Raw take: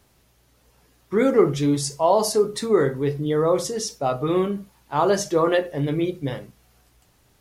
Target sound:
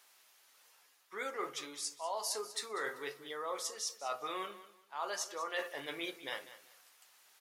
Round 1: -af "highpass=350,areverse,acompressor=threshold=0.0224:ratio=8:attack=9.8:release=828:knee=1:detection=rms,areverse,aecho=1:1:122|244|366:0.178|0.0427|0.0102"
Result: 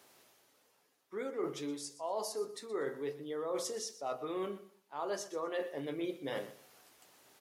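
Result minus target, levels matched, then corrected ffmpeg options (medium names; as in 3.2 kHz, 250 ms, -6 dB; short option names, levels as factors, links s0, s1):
250 Hz band +9.5 dB; echo 72 ms early
-af "highpass=1100,areverse,acompressor=threshold=0.0224:ratio=8:attack=9.8:release=828:knee=1:detection=rms,areverse,aecho=1:1:194|388|582:0.178|0.0427|0.0102"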